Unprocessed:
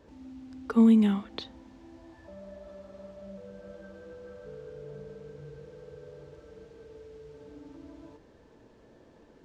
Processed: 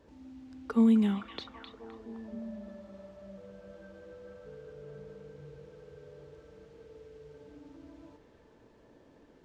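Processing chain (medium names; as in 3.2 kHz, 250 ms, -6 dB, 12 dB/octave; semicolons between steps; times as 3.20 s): repeats whose band climbs or falls 259 ms, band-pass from 2.5 kHz, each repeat -0.7 oct, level -4 dB; trim -3.5 dB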